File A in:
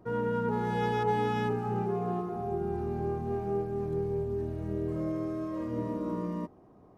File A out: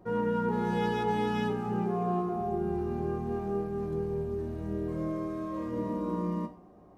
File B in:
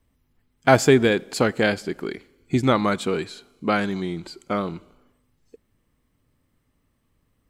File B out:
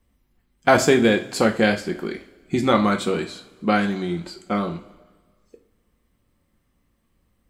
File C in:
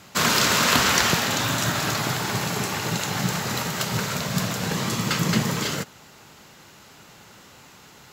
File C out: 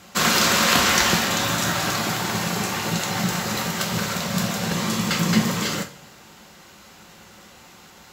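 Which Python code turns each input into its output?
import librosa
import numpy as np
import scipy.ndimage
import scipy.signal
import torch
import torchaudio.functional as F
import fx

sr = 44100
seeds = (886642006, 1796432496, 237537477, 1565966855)

y = fx.rev_double_slope(x, sr, seeds[0], early_s=0.33, late_s=1.7, knee_db=-21, drr_db=4.0)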